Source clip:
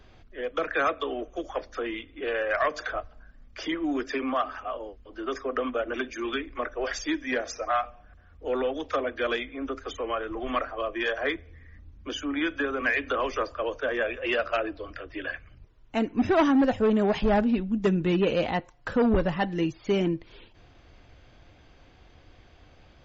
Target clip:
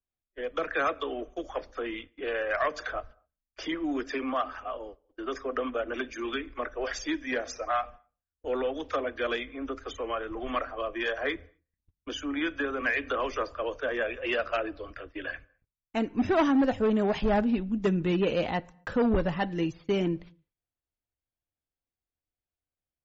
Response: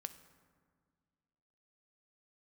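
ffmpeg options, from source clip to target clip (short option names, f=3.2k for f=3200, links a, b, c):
-filter_complex "[0:a]agate=range=-40dB:threshold=-42dB:ratio=16:detection=peak,asplit=2[a][b];[1:a]atrim=start_sample=2205,afade=t=out:st=0.31:d=0.01,atrim=end_sample=14112[c];[b][c]afir=irnorm=-1:irlink=0,volume=-9.5dB[d];[a][d]amix=inputs=2:normalize=0,volume=-4dB"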